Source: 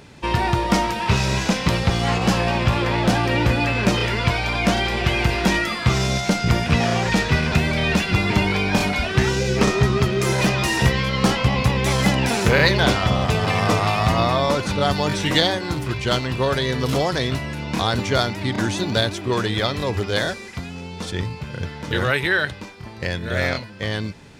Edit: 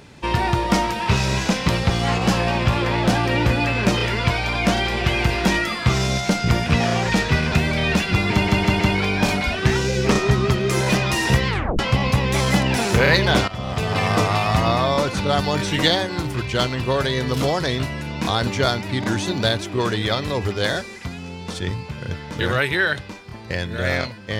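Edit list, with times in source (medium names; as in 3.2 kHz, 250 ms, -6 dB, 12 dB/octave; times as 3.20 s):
8.32 s: stutter 0.16 s, 4 plays
11.00 s: tape stop 0.31 s
13.00–13.52 s: fade in, from -16 dB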